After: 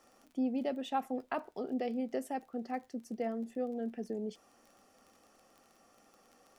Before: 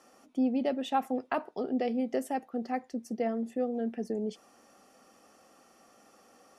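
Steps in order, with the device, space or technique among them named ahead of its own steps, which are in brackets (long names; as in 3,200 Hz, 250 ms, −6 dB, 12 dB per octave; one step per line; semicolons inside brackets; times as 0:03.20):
vinyl LP (surface crackle 27 per second −43 dBFS; pink noise bed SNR 41 dB)
level −5 dB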